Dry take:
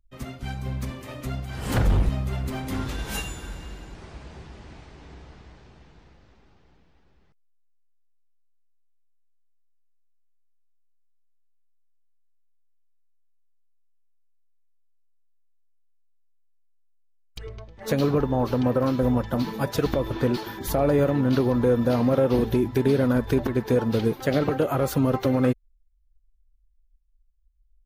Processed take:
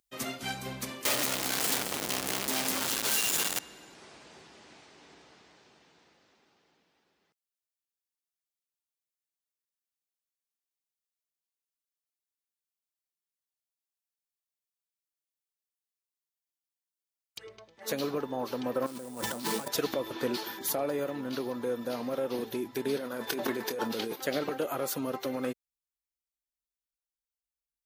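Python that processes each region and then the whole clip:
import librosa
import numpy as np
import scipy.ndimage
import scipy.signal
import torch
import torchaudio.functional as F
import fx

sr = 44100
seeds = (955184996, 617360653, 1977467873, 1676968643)

y = fx.chain(x, sr, fx.clip_1bit(),
    fx.echo_single(ms=219, db=-10.0), at=(1.05, 3.59))
y = fx.chain(y, sr, fx.over_compress(threshold_db=-33.0, ratio=-1.0),
    fx.sample_hold(seeds[0], rate_hz=9100.0, jitter_pct=20), at=(18.86, 19.68))
y = fx.chain(y, sr, fx.highpass(hz=220.0, slope=6),
    fx.over_compress(threshold_db=-28.0, ratio=-1.0),
    fx.doubler(ms=26.0, db=-11), at=(22.97, 24.16))
y = fx.rider(y, sr, range_db=10, speed_s=0.5)
y = scipy.signal.sosfilt(scipy.signal.butter(2, 270.0, 'highpass', fs=sr, output='sos'), y)
y = fx.high_shelf(y, sr, hz=3000.0, db=10.0)
y = y * 10.0 ** (-7.5 / 20.0)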